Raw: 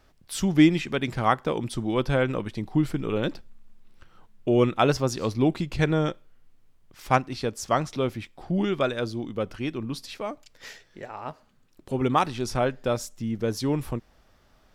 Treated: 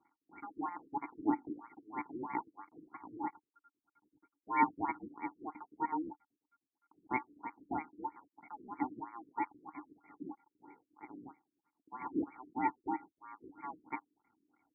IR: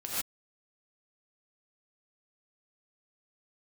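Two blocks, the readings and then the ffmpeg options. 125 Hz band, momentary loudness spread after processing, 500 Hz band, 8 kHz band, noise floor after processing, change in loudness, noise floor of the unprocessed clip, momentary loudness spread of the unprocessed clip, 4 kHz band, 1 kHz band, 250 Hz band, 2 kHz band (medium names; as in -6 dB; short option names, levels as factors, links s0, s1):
-31.5 dB, 18 LU, -23.5 dB, under -40 dB, under -85 dBFS, -13.5 dB, -61 dBFS, 13 LU, under -40 dB, -8.0 dB, -15.5 dB, -13.0 dB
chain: -filter_complex "[0:a]acrossover=split=220[s0][s1];[s0]acompressor=threshold=0.0141:ratio=6[s2];[s1]aphaser=in_gain=1:out_gain=1:delay=2.2:decay=0.51:speed=0.43:type=triangular[s3];[s2][s3]amix=inputs=2:normalize=0,aeval=exprs='max(val(0),0)':c=same,aeval=exprs='val(0)*sin(2*PI*1400*n/s)':c=same,asplit=3[s4][s5][s6];[s4]bandpass=f=300:t=q:w=8,volume=1[s7];[s5]bandpass=f=870:t=q:w=8,volume=0.501[s8];[s6]bandpass=f=2240:t=q:w=8,volume=0.355[s9];[s7][s8][s9]amix=inputs=3:normalize=0,afftfilt=real='re*lt(b*sr/1024,460*pow(2400/460,0.5+0.5*sin(2*PI*3.1*pts/sr)))':imag='im*lt(b*sr/1024,460*pow(2400/460,0.5+0.5*sin(2*PI*3.1*pts/sr)))':win_size=1024:overlap=0.75,volume=2.82"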